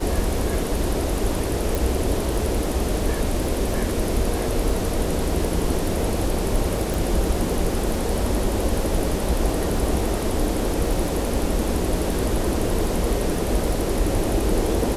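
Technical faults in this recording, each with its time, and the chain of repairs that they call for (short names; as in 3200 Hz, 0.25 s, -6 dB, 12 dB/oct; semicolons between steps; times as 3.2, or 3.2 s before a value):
crackle 24/s -28 dBFS
1.75 pop
6.94 pop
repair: de-click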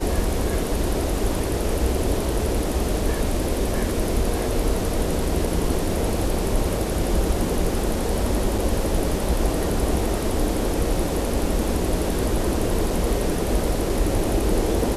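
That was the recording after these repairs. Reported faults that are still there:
none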